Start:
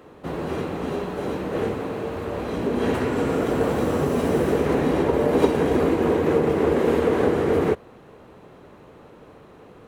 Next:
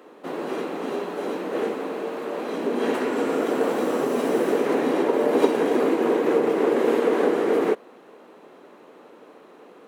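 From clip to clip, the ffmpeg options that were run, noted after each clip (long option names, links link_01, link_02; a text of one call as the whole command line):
ffmpeg -i in.wav -af "highpass=frequency=240:width=0.5412,highpass=frequency=240:width=1.3066" out.wav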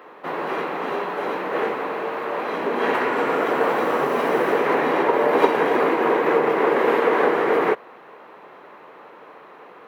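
ffmpeg -i in.wav -af "equalizer=frequency=125:width_type=o:width=1:gain=6,equalizer=frequency=250:width_type=o:width=1:gain=-7,equalizer=frequency=1000:width_type=o:width=1:gain=7,equalizer=frequency=2000:width_type=o:width=1:gain=7,equalizer=frequency=8000:width_type=o:width=1:gain=-10,volume=1.5dB" out.wav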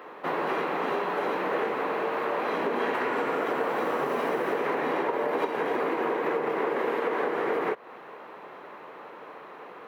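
ffmpeg -i in.wav -af "acompressor=threshold=-24dB:ratio=10" out.wav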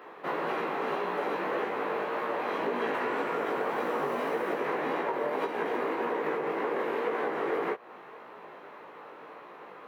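ffmpeg -i in.wav -af "flanger=delay=16.5:depth=4:speed=1.8" out.wav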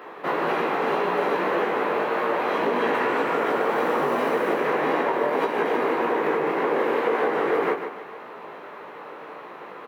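ffmpeg -i in.wav -af "aecho=1:1:148|296|444|592:0.376|0.143|0.0543|0.0206,volume=7dB" out.wav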